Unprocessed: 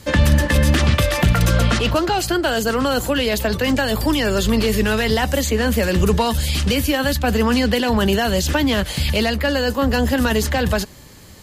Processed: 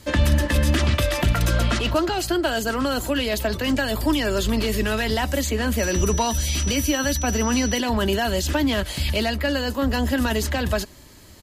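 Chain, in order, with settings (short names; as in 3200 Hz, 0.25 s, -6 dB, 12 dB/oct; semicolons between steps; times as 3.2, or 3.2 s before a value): comb 3.1 ms, depth 36%; 5.78–7.79 whine 5900 Hz -25 dBFS; gain -4.5 dB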